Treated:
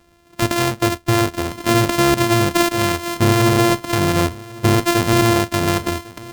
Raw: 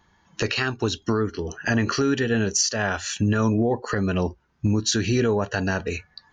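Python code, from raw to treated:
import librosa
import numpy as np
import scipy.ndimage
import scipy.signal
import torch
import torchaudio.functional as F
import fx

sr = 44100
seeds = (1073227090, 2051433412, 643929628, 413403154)

p1 = np.r_[np.sort(x[:len(x) // 128 * 128].reshape(-1, 128), axis=1).ravel(), x[len(x) // 128 * 128:]]
p2 = p1 + fx.echo_single(p1, sr, ms=1101, db=-20.5, dry=0)
y = p2 * 10.0 ** (6.5 / 20.0)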